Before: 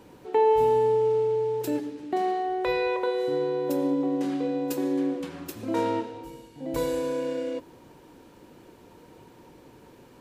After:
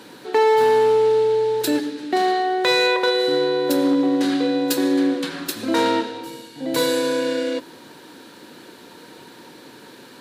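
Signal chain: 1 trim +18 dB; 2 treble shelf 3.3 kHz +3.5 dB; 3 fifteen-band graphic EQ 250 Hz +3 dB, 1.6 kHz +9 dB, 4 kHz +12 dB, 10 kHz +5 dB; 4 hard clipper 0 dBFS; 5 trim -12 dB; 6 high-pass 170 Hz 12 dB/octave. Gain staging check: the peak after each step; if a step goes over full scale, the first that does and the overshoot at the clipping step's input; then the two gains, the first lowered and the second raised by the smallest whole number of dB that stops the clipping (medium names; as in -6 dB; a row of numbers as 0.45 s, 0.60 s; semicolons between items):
+6.0 dBFS, +6.0 dBFS, +8.5 dBFS, 0.0 dBFS, -12.0 dBFS, -8.0 dBFS; step 1, 8.5 dB; step 1 +9 dB, step 5 -3 dB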